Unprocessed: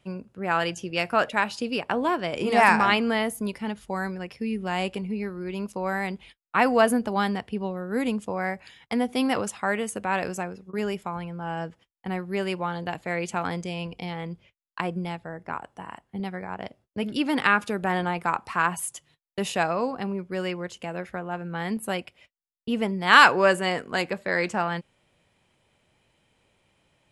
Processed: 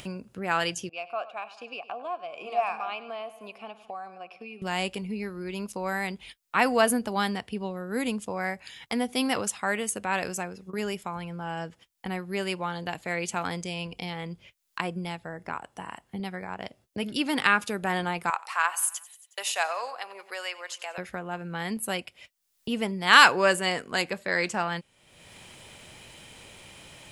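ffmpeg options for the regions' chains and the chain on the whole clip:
-filter_complex "[0:a]asettb=1/sr,asplit=3[a][b][c];[a]atrim=end=0.894[d];[b]atrim=start=0.89:end=4.62,asetpts=PTS-STARTPTS,afade=t=in:d=0.004:c=qsin,afade=t=out:st=3.726:d=0.004:c=qsin,asplit=3[e][f][g];[e]bandpass=f=730:t=q:w=8,volume=0dB[h];[f]bandpass=f=1.09k:t=q:w=8,volume=-6dB[i];[g]bandpass=f=2.44k:t=q:w=8,volume=-9dB[j];[h][i][j]amix=inputs=3:normalize=0,aecho=1:1:100|200|300|400:0.141|0.065|0.0299|0.0137,atrim=end_sample=164493[k];[c]atrim=start=4.616[l];[d][k]acrossfade=d=0.004:c1=hsin:c2=qsin[m];[m][l]acrossfade=d=0.004:c1=qsin:c2=hsin,asettb=1/sr,asplit=3[n][o][p];[n]atrim=end=18.304[q];[o]atrim=start=18.3:end=20.98,asetpts=PTS-STARTPTS,afade=t=in:d=0.004:c=qsin,afade=t=out:st=2.676:d=0.004:c=qsin,highpass=f=620:w=0.5412,highpass=f=620:w=1.3066,aecho=1:1:91|182|273|364:0.112|0.0595|0.0315|0.0167,atrim=end_sample=118188[r];[p]atrim=start=20.976[s];[q][r]acrossfade=d=0.004:c1=hsin:c2=qsin[t];[t][s]acrossfade=d=0.004:c1=qsin:c2=hsin,highshelf=f=2.7k:g=9.5,acompressor=mode=upward:threshold=-28dB:ratio=2.5,volume=-3.5dB"

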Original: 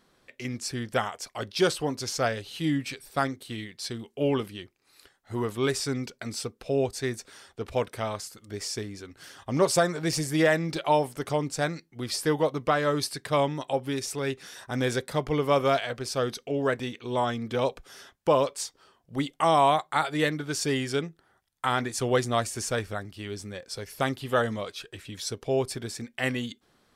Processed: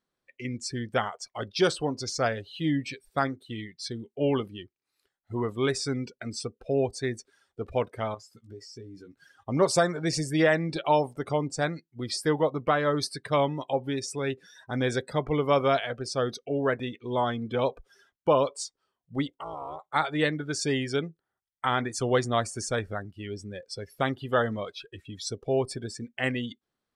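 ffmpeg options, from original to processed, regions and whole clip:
-filter_complex "[0:a]asettb=1/sr,asplit=3[a][b][c];[a]atrim=end=8.144[d];[b]atrim=start=8.14:end=9.19,asetpts=PTS-STARTPTS,afade=t=in:d=0.004:c=qsin,afade=t=out:st=1.046:d=0.004:c=qsin,asplit=2[e][f];[f]adelay=17,volume=-5.5dB[g];[e][g]amix=inputs=2:normalize=0,atrim=end_sample=46305,acompressor=threshold=-40dB:ratio=4:attack=3.2:release=140:knee=1:detection=peak[h];[c]atrim=start=9.186[i];[d][h]acrossfade=d=0.004:c1=hsin:c2=qsin[j];[j][i]acrossfade=d=0.004:c1=qsin:c2=hsin,asettb=1/sr,asplit=3[k][l][m];[k]atrim=end=19.274[n];[l]atrim=start=19.27:end=19.94,asetpts=PTS-STARTPTS,afade=t=in:d=0.004:c=qsin,afade=t=out:st=0.666:d=0.004:c=qsin,tremolo=f=220:d=0.974,acompressor=threshold=-33dB:ratio=5:attack=3.2:release=140:knee=1:detection=peak,asoftclip=type=hard:threshold=-27.5dB[o];[m]atrim=start=19.936[p];[n][o]acrossfade=d=0.004:c1=hsin:c2=qsin[q];[q][p]acrossfade=d=0.004:c1=qsin:c2=hsin,afftdn=nr=20:nf=-40,acrossover=split=9800[r][s];[s]acompressor=threshold=-51dB:ratio=4:attack=1:release=60[t];[r][t]amix=inputs=2:normalize=0"

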